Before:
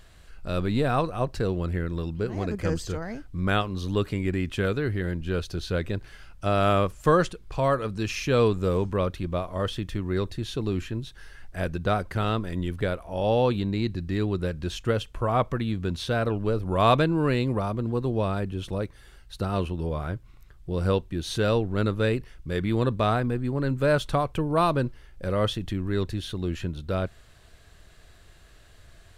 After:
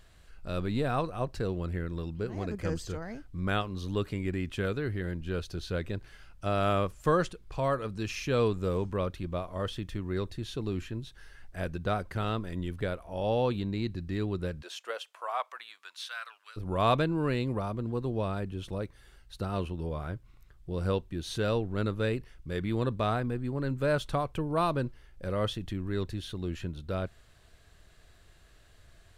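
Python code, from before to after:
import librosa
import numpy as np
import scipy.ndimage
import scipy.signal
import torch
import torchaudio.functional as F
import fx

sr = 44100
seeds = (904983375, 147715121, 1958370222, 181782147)

y = fx.highpass(x, sr, hz=fx.line((14.61, 470.0), (16.56, 1500.0)), slope=24, at=(14.61, 16.56), fade=0.02)
y = y * 10.0 ** (-5.5 / 20.0)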